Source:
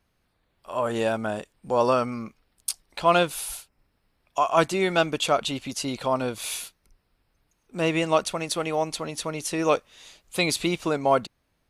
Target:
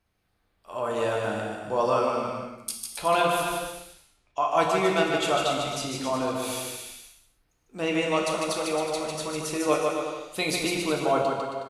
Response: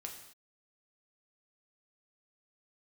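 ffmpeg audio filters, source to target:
-filter_complex "[0:a]asettb=1/sr,asplit=3[link_01][link_02][link_03];[link_01]atrim=end=3.434[link_04];[link_02]atrim=start=3.43:end=4.5,asetpts=PTS-STARTPTS,afade=type=in:duration=0.004:curve=qsin,afade=type=out:start_time=1.066:duration=0.004:curve=qsin,lowpass=5000[link_05];[link_03]atrim=start=4.496[link_06];[link_04][link_05]acrossfade=duration=0.004:curve1=hsin:curve2=qsin[link_07];[link_07][link_06]acrossfade=duration=0.004:curve1=qsin:curve2=hsin,aecho=1:1:150|270|366|442.8|504.2:0.631|0.398|0.251|0.158|0.1[link_08];[1:a]atrim=start_sample=2205[link_09];[link_08][link_09]afir=irnorm=-1:irlink=0"

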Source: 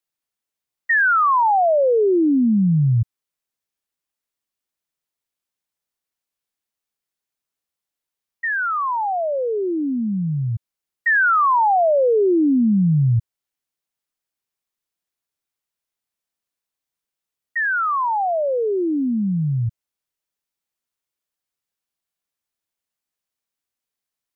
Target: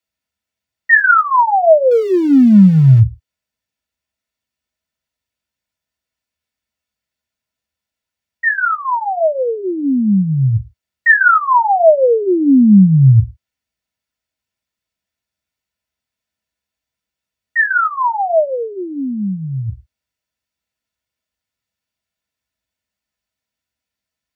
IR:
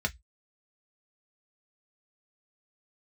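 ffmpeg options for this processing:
-filter_complex "[0:a]asettb=1/sr,asplit=3[link_01][link_02][link_03];[link_01]atrim=end=1.914[link_04];[link_02]atrim=start=1.91:end=3,asetpts=PTS-STARTPTS,afade=type=in:duration=0.004:curve=qsin,afade=type=out:start_time=1.086:duration=0.004:curve=qsin,aeval=exprs='val(0)+0.5*0.0266*sgn(val(0))':channel_layout=same[link_05];[link_03]atrim=start=2.996[link_06];[link_04][link_05]acrossfade=duration=0.004:curve1=hsin:curve2=qsin[link_07];[link_07][link_06]acrossfade=duration=0.004:curve1=qsin:curve2=hsin,asplit=3[link_08][link_09][link_10];[link_08]afade=type=out:start_time=18.47:duration=0.02[link_11];[link_09]lowshelf=frequency=420:gain=-10.5,afade=type=in:start_time=18.47:duration=0.02,afade=type=out:start_time=19.68:duration=0.02[link_12];[link_10]afade=type=in:start_time=19.68:duration=0.02[link_13];[link_11][link_12][link_13]amix=inputs=3:normalize=0[link_14];[1:a]atrim=start_sample=2205[link_15];[link_14][link_15]afir=irnorm=-1:irlink=0,volume=-1dB"

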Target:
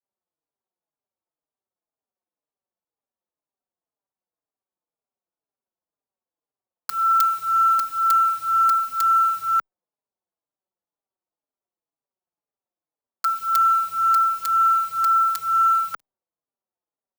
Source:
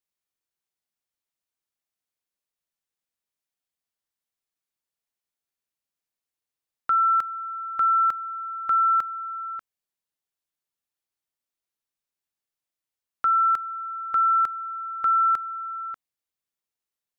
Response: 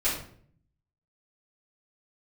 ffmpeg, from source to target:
-filter_complex "[0:a]apsyclip=32dB,aemphasis=mode=production:type=riaa,agate=range=-33dB:threshold=-31dB:ratio=3:detection=peak,acrossover=split=180|1000[link_01][link_02][link_03];[link_02]tremolo=f=18:d=0.41[link_04];[link_03]acrusher=bits=3:mix=0:aa=0.000001[link_05];[link_01][link_04][link_05]amix=inputs=3:normalize=0,asplit=2[link_06][link_07];[link_07]adelay=4.5,afreqshift=-2[link_08];[link_06][link_08]amix=inputs=2:normalize=1,volume=-14.5dB"

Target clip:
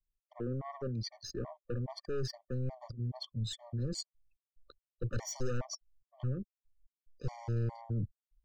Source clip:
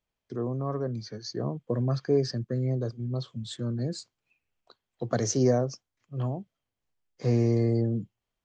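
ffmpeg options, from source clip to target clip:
ffmpeg -i in.wav -af "anlmdn=0.0251,aeval=exprs='(tanh(22.4*val(0)+0.1)-tanh(0.1))/22.4':channel_layout=same,areverse,acompressor=threshold=-41dB:ratio=6,areverse,asubboost=boost=7:cutoff=74,afftfilt=real='re*gt(sin(2*PI*2.4*pts/sr)*(1-2*mod(floor(b*sr/1024/600),2)),0)':imag='im*gt(sin(2*PI*2.4*pts/sr)*(1-2*mod(floor(b*sr/1024/600),2)),0)':win_size=1024:overlap=0.75,volume=7dB" out.wav

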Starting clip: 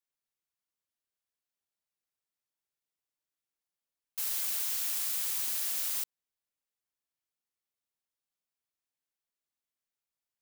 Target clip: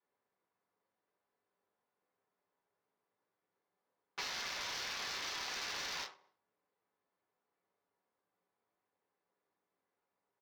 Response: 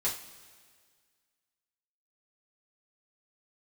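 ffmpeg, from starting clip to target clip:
-filter_complex "[0:a]highshelf=frequency=7900:width_type=q:width=3:gain=-13.5,aecho=1:1:61|122|183|244:0.0944|0.0519|0.0286|0.0157[link_01];[1:a]atrim=start_sample=2205,atrim=end_sample=6174[link_02];[link_01][link_02]afir=irnorm=-1:irlink=0,adynamicsmooth=sensitivity=6.5:basefreq=830,highpass=93,asplit=2[link_03][link_04];[link_04]highpass=frequency=720:poles=1,volume=18dB,asoftclip=type=tanh:threshold=-20.5dB[link_05];[link_03][link_05]amix=inputs=2:normalize=0,lowpass=frequency=2900:poles=1,volume=-6dB,acompressor=threshold=-46dB:ratio=6,volume=6dB"

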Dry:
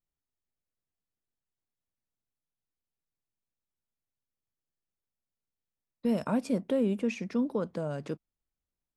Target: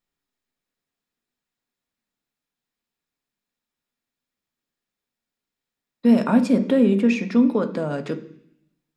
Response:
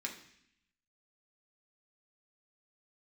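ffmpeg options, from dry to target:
-filter_complex "[0:a]asplit=2[link_01][link_02];[1:a]atrim=start_sample=2205,lowpass=6700[link_03];[link_02][link_03]afir=irnorm=-1:irlink=0,volume=0.5dB[link_04];[link_01][link_04]amix=inputs=2:normalize=0,volume=5.5dB"

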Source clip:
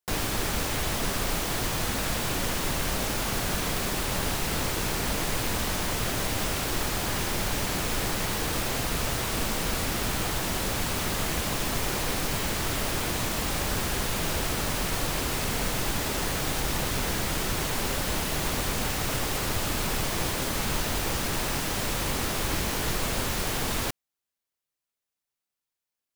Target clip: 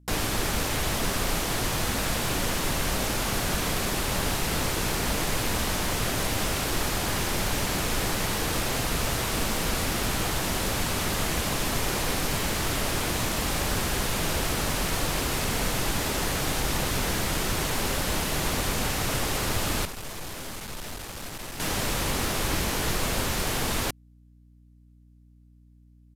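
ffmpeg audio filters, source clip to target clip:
ffmpeg -i in.wav -filter_complex "[0:a]aeval=exprs='val(0)+0.00178*(sin(2*PI*60*n/s)+sin(2*PI*2*60*n/s)/2+sin(2*PI*3*60*n/s)/3+sin(2*PI*4*60*n/s)/4+sin(2*PI*5*60*n/s)/5)':channel_layout=same,asettb=1/sr,asplit=3[link_01][link_02][link_03];[link_01]atrim=end=19.854[link_04];[link_02]atrim=start=19.85:end=21.6,asetpts=PTS-STARTPTS,afade=type=in:duration=0.004:curve=qsin,afade=type=out:start_time=1.746:duration=0.004:curve=qsin,aeval=exprs='(tanh(70.8*val(0)+0.6)-tanh(0.6))/70.8':channel_layout=same[link_05];[link_03]atrim=start=21.596[link_06];[link_04][link_05]acrossfade=duration=0.004:curve1=hsin:curve2=qsin[link_07];[link_07][link_06]acrossfade=duration=0.004:curve1=qsin:curve2=hsin,aresample=32000,aresample=44100,volume=1.5dB" out.wav

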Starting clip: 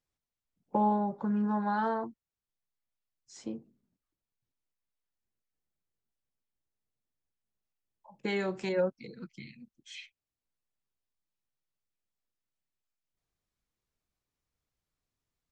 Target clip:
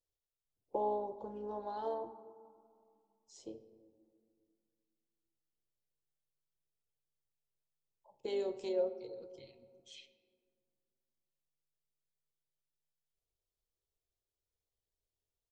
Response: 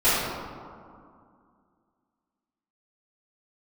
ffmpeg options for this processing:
-filter_complex "[0:a]firequalizer=gain_entry='entry(110,0);entry(170,-20);entry(400,4);entry(1600,-21);entry(3100,-2)':delay=0.05:min_phase=1,tremolo=f=150:d=0.333,asplit=2[link_01][link_02];[1:a]atrim=start_sample=2205[link_03];[link_02][link_03]afir=irnorm=-1:irlink=0,volume=-30dB[link_04];[link_01][link_04]amix=inputs=2:normalize=0,volume=-3.5dB"

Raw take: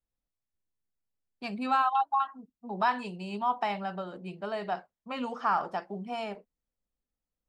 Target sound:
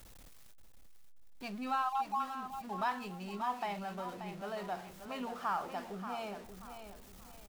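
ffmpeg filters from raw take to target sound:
ffmpeg -i in.wav -af "aeval=exprs='val(0)+0.5*0.0119*sgn(val(0))':channel_layout=same,aecho=1:1:582|1164|1746|2328:0.335|0.107|0.0343|0.011,volume=-8.5dB" out.wav

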